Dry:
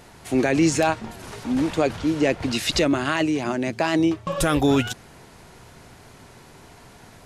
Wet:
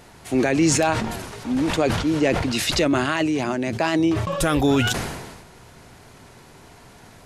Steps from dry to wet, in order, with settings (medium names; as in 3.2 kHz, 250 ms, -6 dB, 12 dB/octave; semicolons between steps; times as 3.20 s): decay stretcher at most 43 dB/s